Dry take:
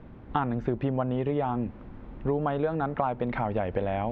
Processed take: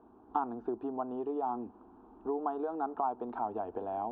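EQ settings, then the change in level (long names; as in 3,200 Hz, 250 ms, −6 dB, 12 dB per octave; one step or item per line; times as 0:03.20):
resonant band-pass 630 Hz, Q 1.1
high-frequency loss of the air 58 metres
phaser with its sweep stopped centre 550 Hz, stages 6
0.0 dB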